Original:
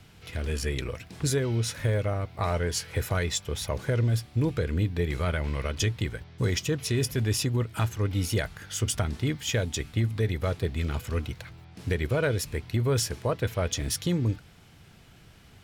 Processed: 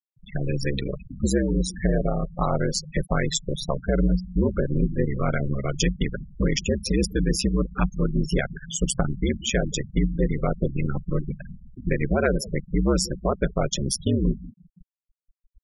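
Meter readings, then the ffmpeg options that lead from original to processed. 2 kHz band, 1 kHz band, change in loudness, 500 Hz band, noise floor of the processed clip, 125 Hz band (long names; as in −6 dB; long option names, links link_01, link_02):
+1.5 dB, +4.0 dB, +3.0 dB, +4.0 dB, below −85 dBFS, +0.5 dB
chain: -filter_complex "[0:a]aeval=exprs='val(0)*sin(2*PI*67*n/s)':channel_layout=same,asplit=2[link_01][link_02];[link_02]acompressor=threshold=-37dB:ratio=20,volume=-1dB[link_03];[link_01][link_03]amix=inputs=2:normalize=0,asplit=2[link_04][link_05];[link_05]adelay=176,lowpass=frequency=2000:poles=1,volume=-17.5dB,asplit=2[link_06][link_07];[link_07]adelay=176,lowpass=frequency=2000:poles=1,volume=0.54,asplit=2[link_08][link_09];[link_09]adelay=176,lowpass=frequency=2000:poles=1,volume=0.54,asplit=2[link_10][link_11];[link_11]adelay=176,lowpass=frequency=2000:poles=1,volume=0.54,asplit=2[link_12][link_13];[link_13]adelay=176,lowpass=frequency=2000:poles=1,volume=0.54[link_14];[link_04][link_06][link_08][link_10][link_12][link_14]amix=inputs=6:normalize=0,afftfilt=real='re*gte(hypot(re,im),0.0398)':imag='im*gte(hypot(re,im),0.0398)':win_size=1024:overlap=0.75,volume=5.5dB"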